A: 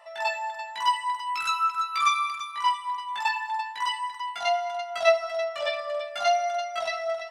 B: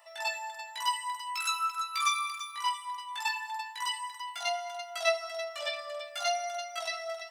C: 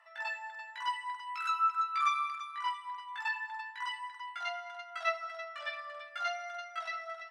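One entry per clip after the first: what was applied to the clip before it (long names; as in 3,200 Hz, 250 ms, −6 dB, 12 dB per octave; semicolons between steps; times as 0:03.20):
RIAA equalisation recording; level −7.5 dB
resonant band-pass 1,500 Hz, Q 2.7; level +4.5 dB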